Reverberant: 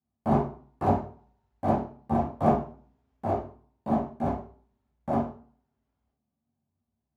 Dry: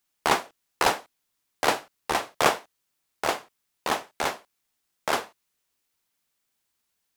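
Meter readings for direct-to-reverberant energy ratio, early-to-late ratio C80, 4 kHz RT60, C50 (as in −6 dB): −11.0 dB, 11.5 dB, can't be measured, 6.0 dB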